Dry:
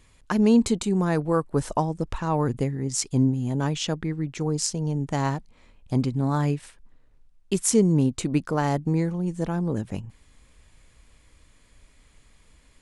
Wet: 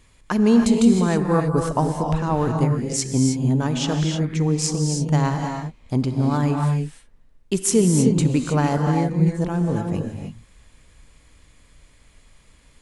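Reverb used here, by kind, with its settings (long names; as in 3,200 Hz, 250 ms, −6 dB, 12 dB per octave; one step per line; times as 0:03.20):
reverb whose tail is shaped and stops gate 340 ms rising, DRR 3 dB
level +2 dB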